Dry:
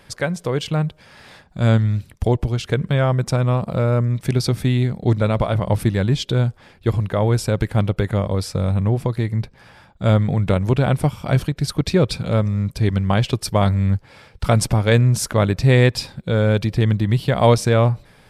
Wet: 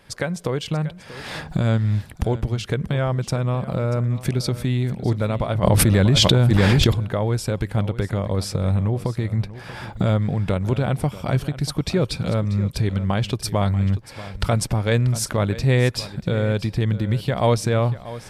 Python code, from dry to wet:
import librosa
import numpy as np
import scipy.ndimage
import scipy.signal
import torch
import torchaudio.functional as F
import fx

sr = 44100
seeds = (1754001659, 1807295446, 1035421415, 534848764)

y = fx.recorder_agc(x, sr, target_db=-9.5, rise_db_per_s=31.0, max_gain_db=30)
y = y + 10.0 ** (-15.5 / 20.0) * np.pad(y, (int(637 * sr / 1000.0), 0))[:len(y)]
y = fx.env_flatten(y, sr, amount_pct=100, at=(5.62, 6.92), fade=0.02)
y = F.gain(torch.from_numpy(y), -4.5).numpy()